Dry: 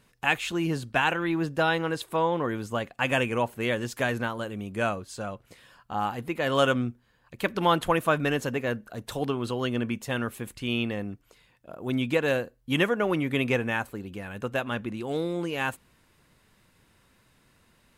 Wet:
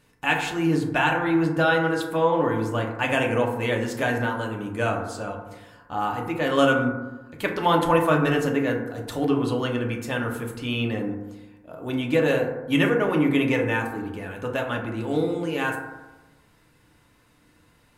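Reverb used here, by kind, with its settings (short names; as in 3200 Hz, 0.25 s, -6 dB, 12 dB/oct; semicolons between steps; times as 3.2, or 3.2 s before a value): FDN reverb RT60 1.1 s, low-frequency decay 1.1×, high-frequency decay 0.3×, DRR 0 dB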